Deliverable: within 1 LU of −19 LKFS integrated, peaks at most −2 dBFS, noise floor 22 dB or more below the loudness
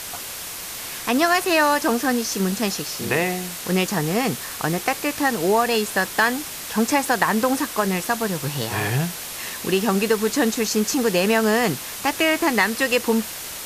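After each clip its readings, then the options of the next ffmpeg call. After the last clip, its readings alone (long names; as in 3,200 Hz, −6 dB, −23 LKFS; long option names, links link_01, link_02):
background noise floor −33 dBFS; target noise floor −44 dBFS; integrated loudness −21.5 LKFS; sample peak −4.0 dBFS; target loudness −19.0 LKFS
→ -af "afftdn=noise_reduction=11:noise_floor=-33"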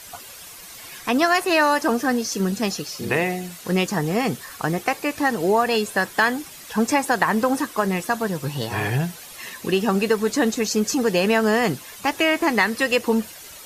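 background noise floor −41 dBFS; target noise floor −44 dBFS
→ -af "afftdn=noise_reduction=6:noise_floor=-41"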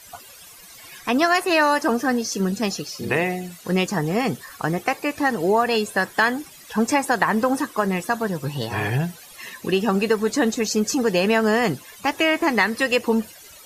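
background noise floor −45 dBFS; integrated loudness −22.0 LKFS; sample peak −4.0 dBFS; target loudness −19.0 LKFS
→ -af "volume=3dB,alimiter=limit=-2dB:level=0:latency=1"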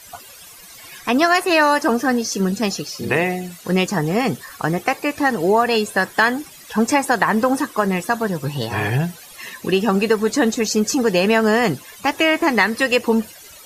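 integrated loudness −19.0 LKFS; sample peak −2.0 dBFS; background noise floor −42 dBFS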